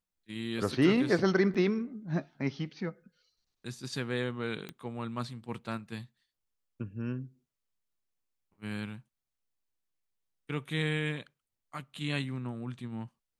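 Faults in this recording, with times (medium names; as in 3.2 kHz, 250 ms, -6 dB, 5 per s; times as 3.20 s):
1.54–1.55 s: dropout 6.4 ms
4.69 s: pop -25 dBFS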